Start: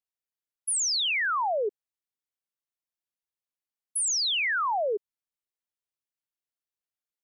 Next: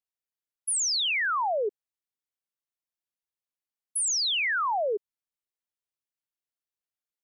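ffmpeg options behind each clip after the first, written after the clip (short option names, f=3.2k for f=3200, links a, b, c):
-af anull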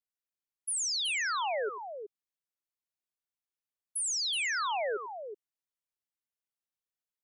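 -af "aecho=1:1:92|373:0.178|0.355,volume=-5.5dB"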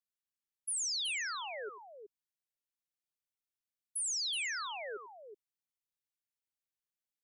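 -af "equalizer=f=710:t=o:w=1.9:g=-9.5,volume=-3dB"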